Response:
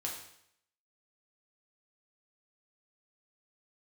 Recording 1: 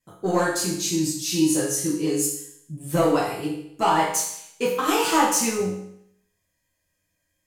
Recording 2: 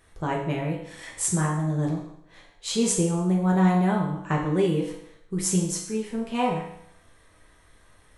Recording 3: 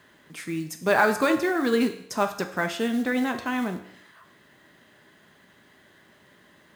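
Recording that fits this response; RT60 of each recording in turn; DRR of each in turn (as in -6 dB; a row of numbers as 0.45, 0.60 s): 2; 0.70, 0.70, 0.70 s; -7.5, -2.0, 6.0 dB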